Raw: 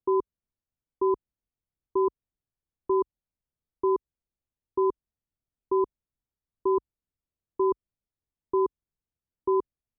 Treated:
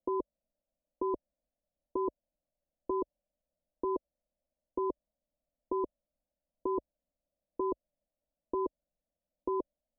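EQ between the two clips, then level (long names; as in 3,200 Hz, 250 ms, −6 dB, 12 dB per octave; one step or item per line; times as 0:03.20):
low-pass with resonance 590 Hz, resonance Q 6.7
phaser with its sweep stopped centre 400 Hz, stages 6
+3.0 dB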